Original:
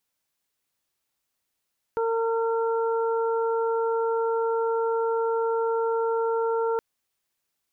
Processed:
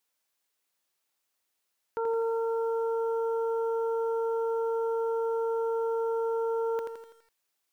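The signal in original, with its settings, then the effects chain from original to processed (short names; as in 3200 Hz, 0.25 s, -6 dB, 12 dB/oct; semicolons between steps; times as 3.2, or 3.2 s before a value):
steady additive tone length 4.82 s, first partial 456 Hz, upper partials -6.5/-10.5 dB, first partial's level -23 dB
tone controls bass -10 dB, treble 0 dB; limiter -23.5 dBFS; lo-fi delay 83 ms, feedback 55%, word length 10-bit, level -5 dB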